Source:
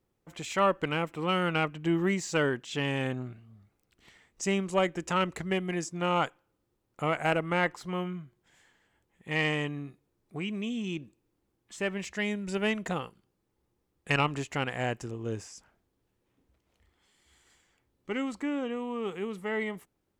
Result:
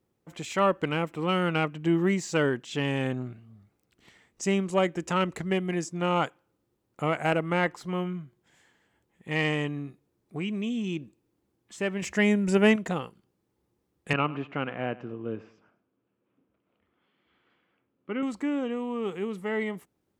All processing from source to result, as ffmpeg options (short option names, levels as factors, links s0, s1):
-filter_complex "[0:a]asettb=1/sr,asplit=3[s0][s1][s2];[s0]atrim=end=12.024[s3];[s1]atrim=start=12.02:end=12.76,asetpts=PTS-STARTPTS,afade=t=in:d=0.004:c=qsin,afade=t=out:st=0.736:d=0.004:c=qsin,equalizer=f=3900:w=2:g=-7,acontrast=68[s4];[s2]atrim=start=12.756[s5];[s3][s4]acrossfade=d=0.004:c1=hsin:c2=qsin[s6];[s6][s5]acrossfade=d=0.004:c1=qsin:c2=hsin,asettb=1/sr,asplit=3[s7][s8][s9];[s7]atrim=end=14.134[s10];[s8]atrim=start=14.13:end=18.23,asetpts=PTS-STARTPTS,afade=t=in:d=0.004:c=qsin,afade=t=out:st=4.096:d=0.004:c=qsin,highpass=160,equalizer=f=390:t=q:w=4:g=-3,equalizer=f=840:t=q:w=4:g=-5,equalizer=f=1300:t=q:w=4:g=3,equalizer=f=1900:t=q:w=4:g=-7,lowpass=f=2800:w=0.5412,lowpass=f=2800:w=1.3066,aecho=1:1:103|206|309:0.112|0.0381|0.013,atrim=end_sample=180810[s11];[s9]atrim=start=18.226[s12];[s10][s11]acrossfade=d=0.004:c1=hsin:c2=qsin[s13];[s13][s12]acrossfade=d=0.004:c1=qsin:c2=hsin,highpass=f=170:p=1,lowshelf=f=370:g=7.5"